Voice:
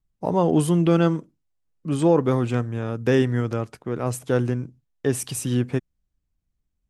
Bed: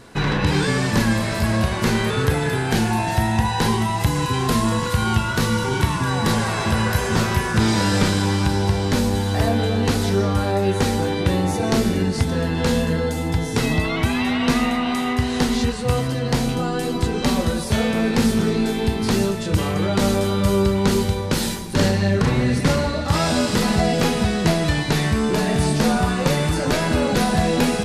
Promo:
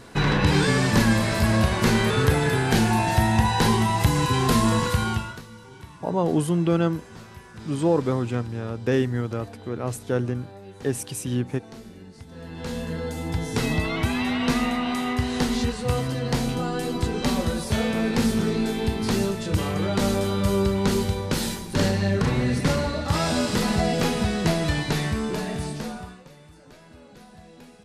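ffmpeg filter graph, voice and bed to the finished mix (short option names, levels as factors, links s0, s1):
-filter_complex "[0:a]adelay=5800,volume=0.708[s0];[1:a]volume=8.91,afade=t=out:st=4.82:d=0.6:silence=0.0707946,afade=t=in:st=12.27:d=1.34:silence=0.105925,afade=t=out:st=24.8:d=1.44:silence=0.0562341[s1];[s0][s1]amix=inputs=2:normalize=0"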